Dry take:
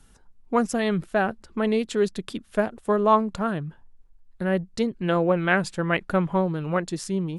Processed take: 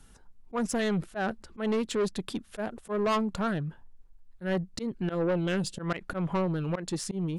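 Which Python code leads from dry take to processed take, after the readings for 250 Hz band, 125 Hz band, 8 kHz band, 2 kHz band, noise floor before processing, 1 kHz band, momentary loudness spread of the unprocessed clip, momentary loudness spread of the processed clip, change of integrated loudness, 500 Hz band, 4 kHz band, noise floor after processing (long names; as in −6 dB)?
−5.0 dB, −4.0 dB, −0.5 dB, −9.0 dB, −55 dBFS, −9.0 dB, 7 LU, 9 LU, −6.5 dB, −7.0 dB, −2.5 dB, −55 dBFS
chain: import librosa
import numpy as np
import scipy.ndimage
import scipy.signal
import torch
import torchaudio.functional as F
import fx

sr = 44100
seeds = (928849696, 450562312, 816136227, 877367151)

y = fx.spec_box(x, sr, start_s=5.15, length_s=0.64, low_hz=570.0, high_hz=2600.0, gain_db=-13)
y = fx.auto_swell(y, sr, attack_ms=126.0)
y = 10.0 ** (-23.0 / 20.0) * np.tanh(y / 10.0 ** (-23.0 / 20.0))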